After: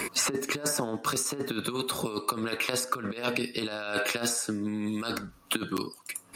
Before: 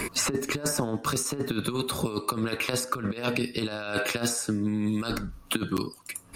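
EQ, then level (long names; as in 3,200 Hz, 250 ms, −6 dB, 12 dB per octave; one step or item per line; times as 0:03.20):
high-pass filter 290 Hz 6 dB per octave
0.0 dB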